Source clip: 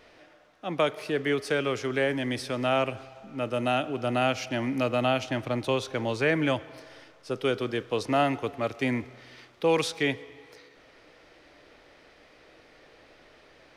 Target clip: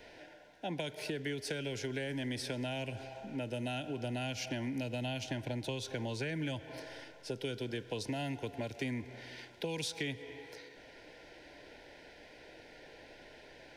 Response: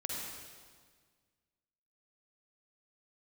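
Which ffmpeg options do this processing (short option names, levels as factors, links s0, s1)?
-filter_complex "[0:a]acrossover=split=220|3000[s0][s1][s2];[s1]acompressor=threshold=0.02:ratio=6[s3];[s0][s3][s2]amix=inputs=3:normalize=0,asuperstop=centerf=1200:order=20:qfactor=3.8,acompressor=threshold=0.0141:ratio=3,volume=1.12"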